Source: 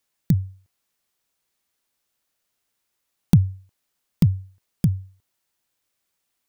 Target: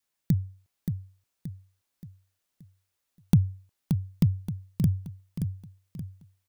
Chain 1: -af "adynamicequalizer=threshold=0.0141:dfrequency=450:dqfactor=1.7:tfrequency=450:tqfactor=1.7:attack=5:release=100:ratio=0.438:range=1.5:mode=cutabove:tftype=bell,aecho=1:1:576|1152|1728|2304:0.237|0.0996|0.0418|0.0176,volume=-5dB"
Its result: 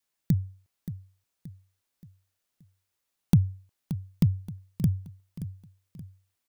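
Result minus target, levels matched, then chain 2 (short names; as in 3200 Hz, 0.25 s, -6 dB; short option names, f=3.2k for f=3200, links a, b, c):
echo-to-direct -6 dB
-af "adynamicequalizer=threshold=0.0141:dfrequency=450:dqfactor=1.7:tfrequency=450:tqfactor=1.7:attack=5:release=100:ratio=0.438:range=1.5:mode=cutabove:tftype=bell,aecho=1:1:576|1152|1728|2304|2880:0.473|0.199|0.0835|0.0351|0.0147,volume=-5dB"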